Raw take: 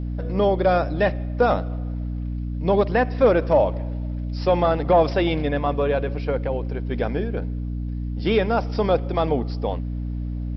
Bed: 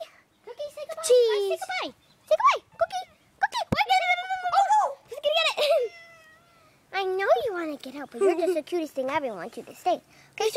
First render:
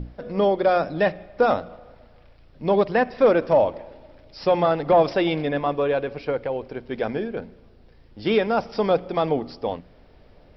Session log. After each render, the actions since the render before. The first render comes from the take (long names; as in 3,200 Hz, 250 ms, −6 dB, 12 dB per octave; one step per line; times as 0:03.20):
mains-hum notches 60/120/180/240/300 Hz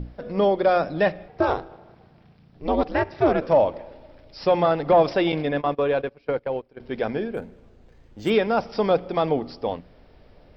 0:01.28–0:03.41: ring modulation 150 Hz
0:05.32–0:06.80: noise gate −29 dBFS, range −20 dB
0:07.34–0:08.30: linearly interpolated sample-rate reduction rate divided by 4×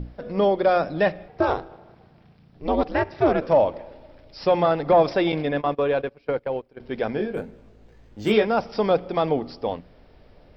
0:04.81–0:05.38: notch filter 2,900 Hz
0:07.17–0:08.45: double-tracking delay 19 ms −4 dB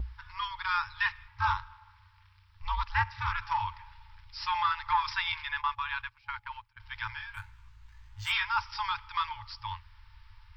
brick-wall band-stop 110–840 Hz
noise gate with hold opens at −54 dBFS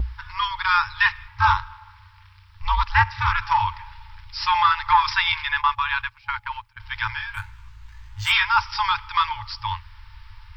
level +10.5 dB